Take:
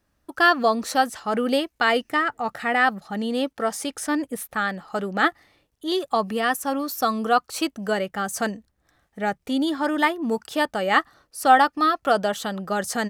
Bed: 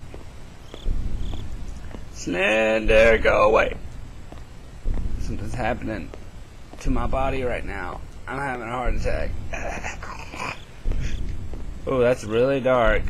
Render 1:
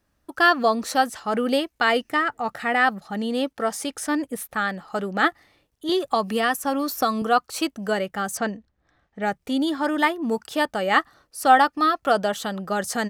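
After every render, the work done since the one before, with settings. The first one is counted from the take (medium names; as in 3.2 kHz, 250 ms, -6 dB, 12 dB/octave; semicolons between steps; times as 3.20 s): 5.89–7.22 s: three bands compressed up and down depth 70%; 8.37–9.22 s: distance through air 130 m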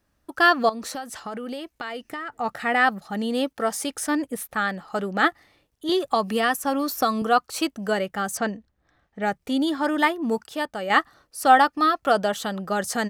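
0.69–2.40 s: compression 8:1, threshold -29 dBFS; 2.92–4.11 s: treble shelf 10 kHz +5 dB; 10.44–10.90 s: gain -5 dB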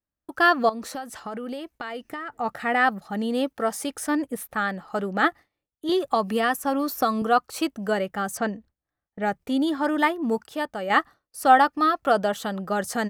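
gate with hold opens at -40 dBFS; peaking EQ 5.5 kHz -4.5 dB 2.6 oct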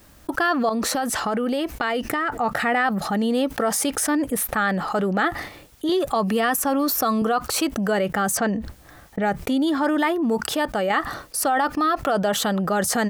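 peak limiter -13.5 dBFS, peak gain reduction 9 dB; level flattener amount 70%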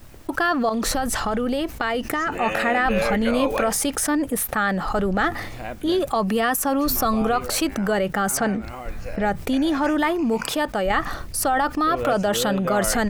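add bed -8.5 dB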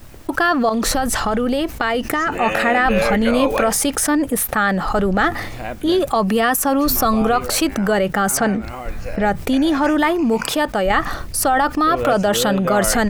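trim +4.5 dB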